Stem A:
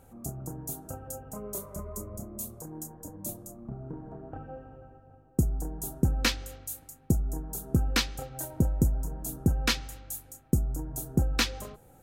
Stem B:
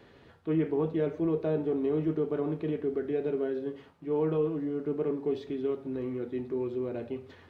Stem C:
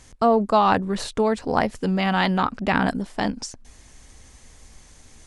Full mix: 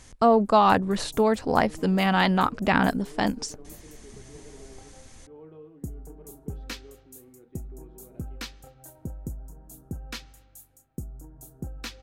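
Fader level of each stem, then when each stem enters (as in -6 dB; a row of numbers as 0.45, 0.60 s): -11.0, -19.0, -0.5 dB; 0.45, 1.20, 0.00 s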